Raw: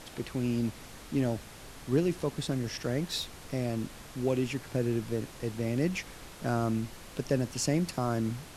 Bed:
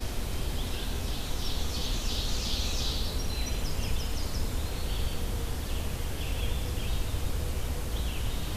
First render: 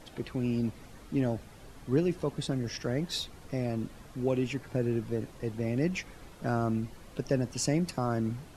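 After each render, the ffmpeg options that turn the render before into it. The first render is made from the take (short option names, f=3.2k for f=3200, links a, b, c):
-af "afftdn=nr=9:nf=-48"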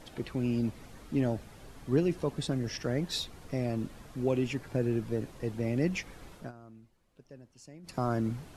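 -filter_complex "[0:a]asplit=3[a][b][c];[a]atrim=end=6.52,asetpts=PTS-STARTPTS,afade=t=out:st=6.35:d=0.17:silence=0.0749894[d];[b]atrim=start=6.52:end=7.83,asetpts=PTS-STARTPTS,volume=-22.5dB[e];[c]atrim=start=7.83,asetpts=PTS-STARTPTS,afade=t=in:d=0.17:silence=0.0749894[f];[d][e][f]concat=n=3:v=0:a=1"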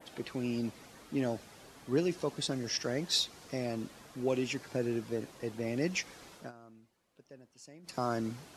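-af "highpass=f=300:p=1,adynamicequalizer=threshold=0.00178:dfrequency=5500:dqfactor=0.98:tfrequency=5500:tqfactor=0.98:attack=5:release=100:ratio=0.375:range=3.5:mode=boostabove:tftype=bell"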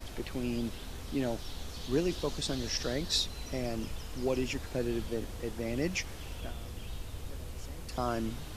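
-filter_complex "[1:a]volume=-10.5dB[a];[0:a][a]amix=inputs=2:normalize=0"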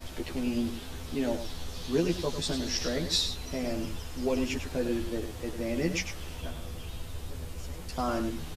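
-filter_complex "[0:a]asplit=2[a][b];[b]adelay=12,volume=-2dB[c];[a][c]amix=inputs=2:normalize=0,aecho=1:1:101:0.355"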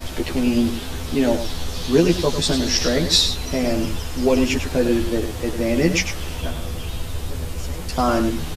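-af "volume=11.5dB"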